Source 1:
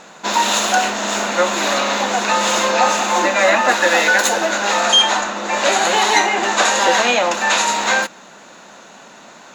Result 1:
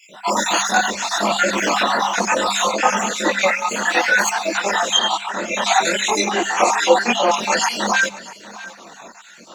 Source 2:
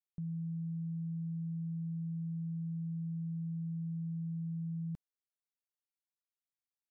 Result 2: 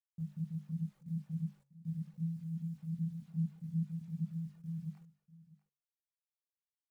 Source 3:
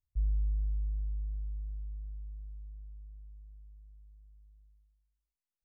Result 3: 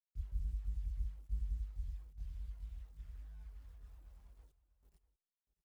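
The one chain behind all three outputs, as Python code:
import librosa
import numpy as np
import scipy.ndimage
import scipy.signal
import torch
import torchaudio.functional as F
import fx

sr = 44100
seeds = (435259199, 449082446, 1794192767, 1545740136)

y = fx.spec_dropout(x, sr, seeds[0], share_pct=59)
y = scipy.signal.sosfilt(scipy.signal.butter(2, 52.0, 'highpass', fs=sr, output='sos'), y)
y = fx.hum_notches(y, sr, base_hz=50, count=5)
y = fx.dynamic_eq(y, sr, hz=170.0, q=0.77, threshold_db=-42.0, ratio=4.0, max_db=3)
y = fx.rider(y, sr, range_db=3, speed_s=0.5)
y = fx.quant_dither(y, sr, seeds[1], bits=12, dither='none')
y = fx.comb_fb(y, sr, f0_hz=140.0, decay_s=0.87, harmonics='all', damping=0.0, mix_pct=40)
y = fx.chorus_voices(y, sr, voices=6, hz=0.61, base_ms=23, depth_ms=3.3, mix_pct=60)
y = y + 10.0 ** (-18.0 / 20.0) * np.pad(y, (int(643 * sr / 1000.0), 0))[:len(y)]
y = y * librosa.db_to_amplitude(8.0)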